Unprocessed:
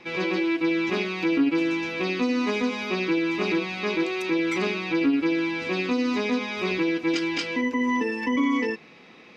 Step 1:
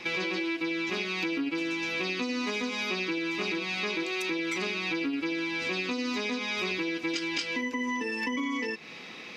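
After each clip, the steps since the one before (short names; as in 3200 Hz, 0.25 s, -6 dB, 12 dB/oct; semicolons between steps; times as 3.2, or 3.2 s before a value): high shelf 2100 Hz +10.5 dB; compressor 6:1, threshold -31 dBFS, peak gain reduction 13 dB; gain +2 dB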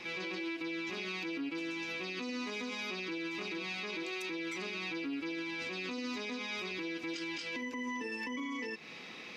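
limiter -27 dBFS, peak gain reduction 8.5 dB; gain -4 dB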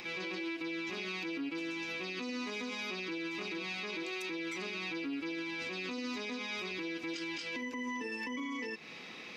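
upward compressor, threshold -49 dBFS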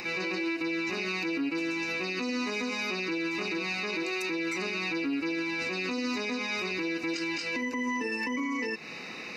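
Butterworth band-stop 3300 Hz, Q 4.6; gain +7.5 dB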